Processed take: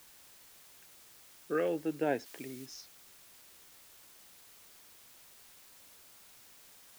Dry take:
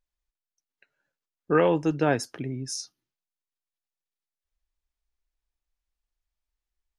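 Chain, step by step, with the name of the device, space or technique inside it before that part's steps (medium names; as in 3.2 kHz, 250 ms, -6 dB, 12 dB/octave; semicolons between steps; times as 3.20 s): shortwave radio (band-pass 270–2800 Hz; tremolo 0.33 Hz, depth 56%; LFO notch saw up 0.3 Hz 440–2100 Hz; white noise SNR 16 dB); 2.26–2.66 s: tilt shelf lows -5 dB, about 1.2 kHz; trim -1.5 dB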